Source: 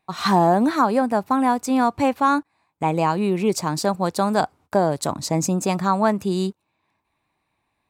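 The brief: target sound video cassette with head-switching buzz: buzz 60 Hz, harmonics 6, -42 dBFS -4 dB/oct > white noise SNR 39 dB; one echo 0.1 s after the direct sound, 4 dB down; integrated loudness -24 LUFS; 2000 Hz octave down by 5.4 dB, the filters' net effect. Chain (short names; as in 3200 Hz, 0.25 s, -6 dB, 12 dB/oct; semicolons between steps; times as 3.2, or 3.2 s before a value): bell 2000 Hz -8 dB; echo 0.1 s -4 dB; buzz 60 Hz, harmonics 6, -42 dBFS -4 dB/oct; white noise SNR 39 dB; gain -3.5 dB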